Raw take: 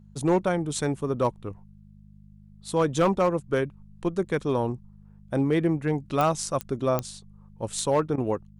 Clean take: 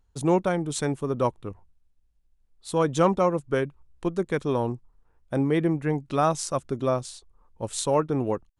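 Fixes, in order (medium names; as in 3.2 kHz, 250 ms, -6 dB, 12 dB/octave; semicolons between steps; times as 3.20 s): clip repair -15 dBFS; de-click; de-hum 50.8 Hz, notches 4; interpolate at 8.16 s, 17 ms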